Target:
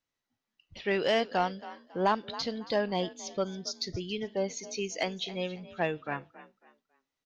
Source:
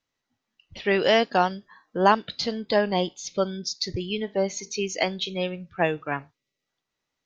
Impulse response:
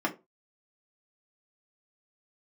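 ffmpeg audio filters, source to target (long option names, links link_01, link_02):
-filter_complex "[0:a]asplit=2[link_01][link_02];[link_02]asplit=3[link_03][link_04][link_05];[link_03]adelay=275,afreqshift=42,volume=-17.5dB[link_06];[link_04]adelay=550,afreqshift=84,volume=-27.7dB[link_07];[link_05]adelay=825,afreqshift=126,volume=-37.8dB[link_08];[link_06][link_07][link_08]amix=inputs=3:normalize=0[link_09];[link_01][link_09]amix=inputs=2:normalize=0,asoftclip=type=tanh:threshold=-9.5dB,volume=-6dB"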